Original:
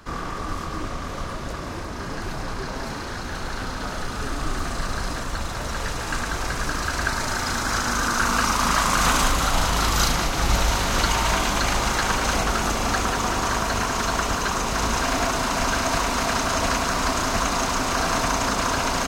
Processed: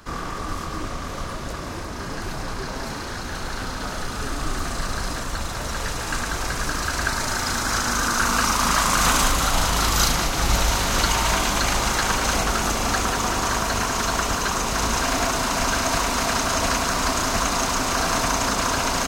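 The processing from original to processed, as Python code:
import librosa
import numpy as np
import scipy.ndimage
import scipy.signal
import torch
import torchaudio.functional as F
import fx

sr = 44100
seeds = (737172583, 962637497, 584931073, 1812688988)

y = fx.high_shelf(x, sr, hz=5400.0, db=5.0)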